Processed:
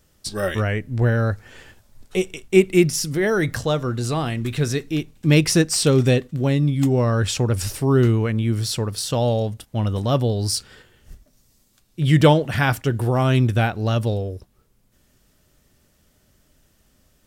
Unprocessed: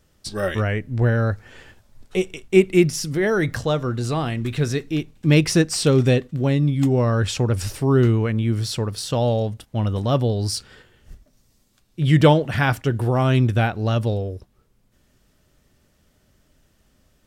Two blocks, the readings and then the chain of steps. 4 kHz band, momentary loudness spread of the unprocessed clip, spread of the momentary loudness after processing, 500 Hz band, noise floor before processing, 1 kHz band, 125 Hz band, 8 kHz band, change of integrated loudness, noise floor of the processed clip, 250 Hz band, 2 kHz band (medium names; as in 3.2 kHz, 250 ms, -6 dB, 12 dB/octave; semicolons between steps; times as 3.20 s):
+2.0 dB, 9 LU, 9 LU, 0.0 dB, -63 dBFS, 0.0 dB, 0.0 dB, +4.0 dB, 0.0 dB, -62 dBFS, 0.0 dB, +0.5 dB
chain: treble shelf 6.6 kHz +7 dB